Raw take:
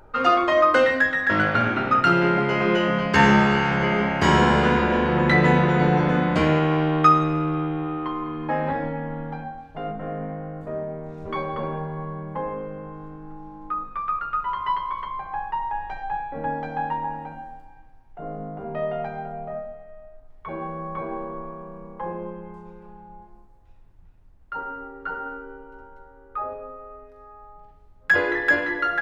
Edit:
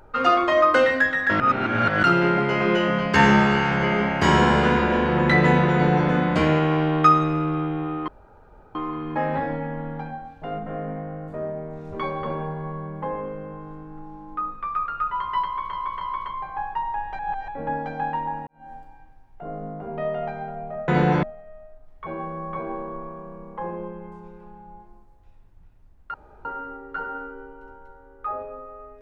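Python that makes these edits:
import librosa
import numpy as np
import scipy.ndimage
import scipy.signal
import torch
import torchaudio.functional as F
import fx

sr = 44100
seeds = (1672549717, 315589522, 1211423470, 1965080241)

y = fx.edit(x, sr, fx.reverse_span(start_s=1.4, length_s=0.63),
    fx.duplicate(start_s=5.73, length_s=0.35, to_s=19.65),
    fx.insert_room_tone(at_s=8.08, length_s=0.67),
    fx.repeat(start_s=14.78, length_s=0.28, count=3),
    fx.reverse_span(start_s=15.96, length_s=0.29),
    fx.fade_in_span(start_s=17.24, length_s=0.25, curve='qua'),
    fx.insert_room_tone(at_s=24.56, length_s=0.31), tone=tone)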